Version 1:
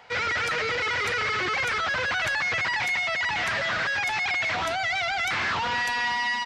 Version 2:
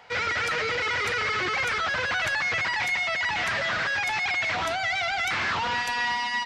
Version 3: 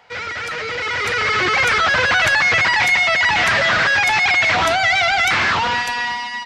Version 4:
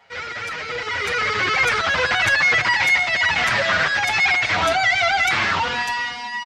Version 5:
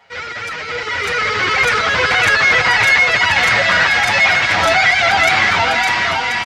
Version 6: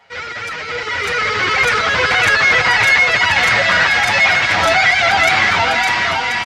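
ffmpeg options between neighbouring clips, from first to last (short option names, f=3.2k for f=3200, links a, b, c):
-af "bandreject=f=128.6:t=h:w=4,bandreject=f=257.2:t=h:w=4,bandreject=f=385.8:t=h:w=4,bandreject=f=514.4:t=h:w=4,bandreject=f=643:t=h:w=4,bandreject=f=771.6:t=h:w=4,bandreject=f=900.2:t=h:w=4,bandreject=f=1.0288k:t=h:w=4,bandreject=f=1.1574k:t=h:w=4,bandreject=f=1.286k:t=h:w=4,bandreject=f=1.4146k:t=h:w=4,bandreject=f=1.5432k:t=h:w=4,bandreject=f=1.6718k:t=h:w=4,bandreject=f=1.8004k:t=h:w=4,bandreject=f=1.929k:t=h:w=4,bandreject=f=2.0576k:t=h:w=4,bandreject=f=2.1862k:t=h:w=4,bandreject=f=2.3148k:t=h:w=4,bandreject=f=2.4434k:t=h:w=4,bandreject=f=2.572k:t=h:w=4,bandreject=f=2.7006k:t=h:w=4,bandreject=f=2.8292k:t=h:w=4,bandreject=f=2.9578k:t=h:w=4,bandreject=f=3.0864k:t=h:w=4,bandreject=f=3.215k:t=h:w=4,bandreject=f=3.3436k:t=h:w=4,bandreject=f=3.4722k:t=h:w=4,bandreject=f=3.6008k:t=h:w=4,bandreject=f=3.7294k:t=h:w=4,bandreject=f=3.858k:t=h:w=4,bandreject=f=3.9866k:t=h:w=4,bandreject=f=4.1152k:t=h:w=4,bandreject=f=4.2438k:t=h:w=4,bandreject=f=4.3724k:t=h:w=4,bandreject=f=4.501k:t=h:w=4"
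-af "dynaudnorm=f=330:g=7:m=11.5dB"
-filter_complex "[0:a]asplit=2[a][b];[b]adelay=6.8,afreqshift=-2.2[c];[a][c]amix=inputs=2:normalize=1"
-af "aecho=1:1:560|1036|1441|1785|2077:0.631|0.398|0.251|0.158|0.1,volume=3.5dB"
-af "aresample=32000,aresample=44100"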